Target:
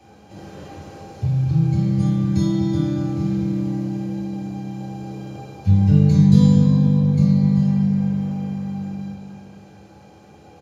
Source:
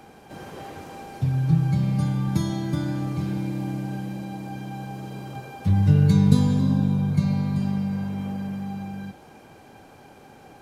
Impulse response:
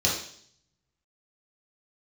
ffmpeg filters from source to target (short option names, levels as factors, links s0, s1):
-filter_complex "[0:a]asplit=2[s0][s1];[s1]adelay=239,lowpass=f=2000:p=1,volume=0.422,asplit=2[s2][s3];[s3]adelay=239,lowpass=f=2000:p=1,volume=0.51,asplit=2[s4][s5];[s5]adelay=239,lowpass=f=2000:p=1,volume=0.51,asplit=2[s6][s7];[s7]adelay=239,lowpass=f=2000:p=1,volume=0.51,asplit=2[s8][s9];[s9]adelay=239,lowpass=f=2000:p=1,volume=0.51,asplit=2[s10][s11];[s11]adelay=239,lowpass=f=2000:p=1,volume=0.51[s12];[s0][s2][s4][s6][s8][s10][s12]amix=inputs=7:normalize=0[s13];[1:a]atrim=start_sample=2205[s14];[s13][s14]afir=irnorm=-1:irlink=0,volume=0.211"